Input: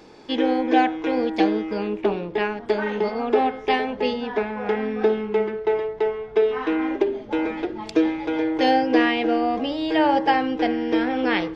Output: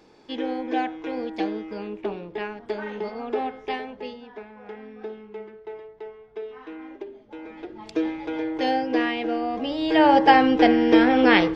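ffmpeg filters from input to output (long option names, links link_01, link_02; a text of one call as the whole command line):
ffmpeg -i in.wav -af "volume=14dB,afade=type=out:start_time=3.61:duration=0.67:silence=0.375837,afade=type=in:start_time=7.42:duration=0.66:silence=0.281838,afade=type=in:start_time=9.52:duration=0.92:silence=0.298538" out.wav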